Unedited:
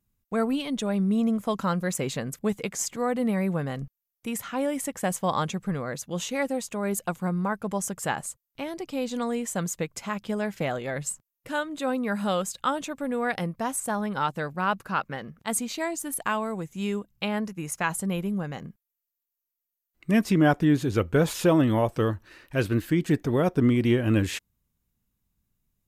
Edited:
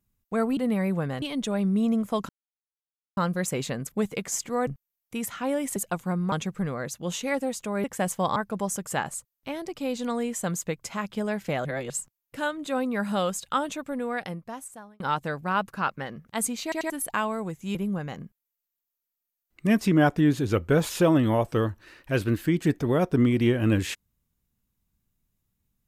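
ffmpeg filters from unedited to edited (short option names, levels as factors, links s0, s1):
-filter_complex "[0:a]asplit=16[s0][s1][s2][s3][s4][s5][s6][s7][s8][s9][s10][s11][s12][s13][s14][s15];[s0]atrim=end=0.572[s16];[s1]atrim=start=3.138:end=3.792[s17];[s2]atrim=start=0.568:end=1.64,asetpts=PTS-STARTPTS,afade=t=out:st=1.068:d=0.004:c=hsin,apad=pad_dur=0.88[s18];[s3]atrim=start=1.64:end=3.142,asetpts=PTS-STARTPTS,afade=t=in:d=0.004:c=hsin[s19];[s4]atrim=start=3.788:end=4.882[s20];[s5]atrim=start=6.918:end=7.482[s21];[s6]atrim=start=5.398:end=6.922[s22];[s7]atrim=start=4.878:end=5.402[s23];[s8]atrim=start=7.478:end=10.772[s24];[s9]atrim=start=10.768:end=11.022,asetpts=PTS-STARTPTS,areverse[s25];[s10]atrim=start=11.018:end=14.12,asetpts=PTS-STARTPTS,afade=t=out:st=1.842:d=1.26[s26];[s11]atrim=start=14.12:end=15.842,asetpts=PTS-STARTPTS,afade=t=in:d=0.004:c=hsin[s27];[s12]atrim=start=15.748:end=15.842[s28];[s13]atrim=start=15.748:end=15.842[s29];[s14]atrim=start=16.018:end=16.872[s30];[s15]atrim=start=18.188[s31];[s16][s17]acrossfade=d=0.004:c1=hsin:c2=hsin[s32];[s18][s19]concat=n=2:v=0:a=1[s33];[s32][s33]acrossfade=d=0.004:c1=hsin:c2=hsin[s34];[s34][s20]acrossfade=d=0.004:c1=hsin:c2=hsin[s35];[s35][s21]acrossfade=d=0.004:c1=hsin:c2=hsin[s36];[s36][s22]acrossfade=d=0.004:c1=hsin:c2=hsin[s37];[s37][s23]acrossfade=d=0.004:c1=hsin:c2=hsin[s38];[s38][s24]acrossfade=d=0.004:c1=hsin:c2=hsin[s39];[s39][s25]acrossfade=d=0.004:c1=hsin:c2=hsin[s40];[s26][s27]concat=n=2:v=0:a=1[s41];[s40][s41]acrossfade=d=0.004:c1=hsin:c2=hsin[s42];[s42][s28]acrossfade=d=0.004:c1=hsin:c2=hsin[s43];[s43][s29]acrossfade=d=0.004:c1=hsin:c2=hsin[s44];[s44][s30]acrossfade=d=0.004:c1=hsin:c2=hsin[s45];[s45][s31]acrossfade=d=0.004:c1=hsin:c2=hsin"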